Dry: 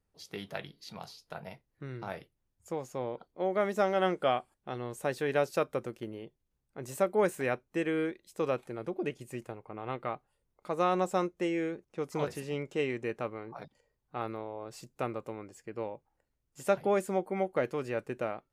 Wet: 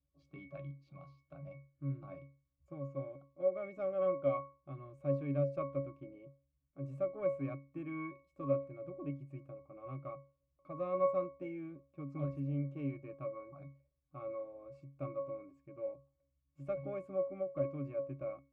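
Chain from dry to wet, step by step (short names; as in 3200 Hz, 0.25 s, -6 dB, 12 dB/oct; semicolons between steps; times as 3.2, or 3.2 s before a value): one diode to ground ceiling -17.5 dBFS; octave resonator C#, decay 0.35 s; gain +10 dB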